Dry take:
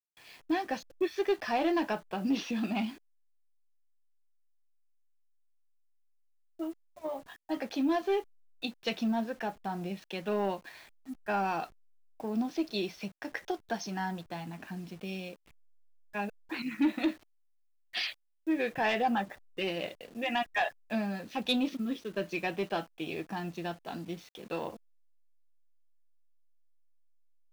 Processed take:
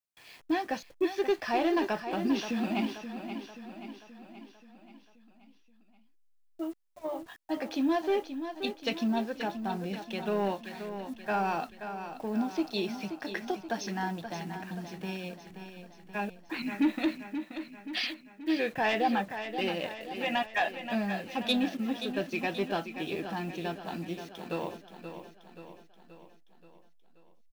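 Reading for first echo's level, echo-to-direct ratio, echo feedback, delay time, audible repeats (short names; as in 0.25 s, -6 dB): -9.5 dB, -8.0 dB, 55%, 0.529 s, 5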